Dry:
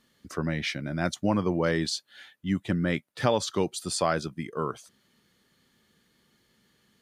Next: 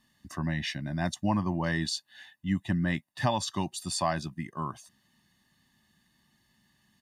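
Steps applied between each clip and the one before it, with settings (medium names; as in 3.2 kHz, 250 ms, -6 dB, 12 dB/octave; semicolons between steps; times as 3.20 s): comb 1.1 ms, depth 93%; trim -4.5 dB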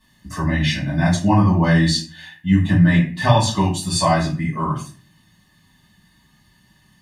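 reverberation RT60 0.40 s, pre-delay 4 ms, DRR -9 dB; trim +2 dB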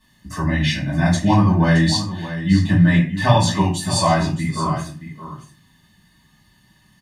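delay 621 ms -12 dB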